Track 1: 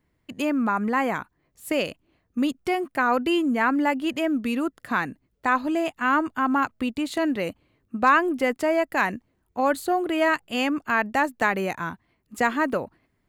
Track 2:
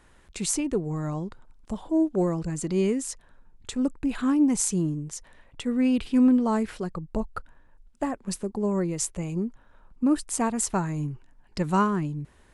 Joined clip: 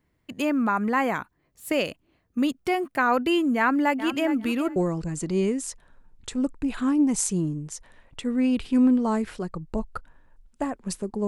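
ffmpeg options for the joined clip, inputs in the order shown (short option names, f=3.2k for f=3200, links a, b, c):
-filter_complex "[0:a]asplit=3[a][b][c];[a]afade=t=out:st=3.98:d=0.02[d];[b]aecho=1:1:413|826:0.251|0.0427,afade=t=in:st=3.98:d=0.02,afade=t=out:st=4.76:d=0.02[e];[c]afade=t=in:st=4.76:d=0.02[f];[d][e][f]amix=inputs=3:normalize=0,apad=whole_dur=11.27,atrim=end=11.27,atrim=end=4.762[g];[1:a]atrim=start=2.168:end=8.68[h];[g][h]acrossfade=d=0.004:c1=hsin:c2=hsin"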